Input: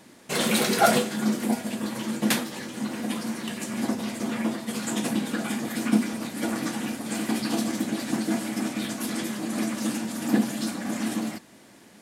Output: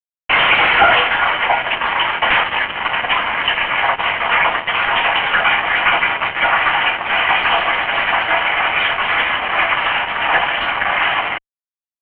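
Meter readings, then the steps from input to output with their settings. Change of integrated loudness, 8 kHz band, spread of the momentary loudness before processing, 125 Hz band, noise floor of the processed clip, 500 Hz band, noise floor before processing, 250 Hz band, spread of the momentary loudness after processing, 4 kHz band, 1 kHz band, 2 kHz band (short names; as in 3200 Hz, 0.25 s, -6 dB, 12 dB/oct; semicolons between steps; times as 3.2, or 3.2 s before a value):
+12.5 dB, under -40 dB, 8 LU, -1.5 dB, under -85 dBFS, +7.5 dB, -52 dBFS, -11.0 dB, 5 LU, +15.5 dB, +17.5 dB, +21.0 dB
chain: HPF 880 Hz 24 dB/oct; fuzz box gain 39 dB, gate -42 dBFS; rippled Chebyshev low-pass 3100 Hz, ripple 3 dB; gain +7.5 dB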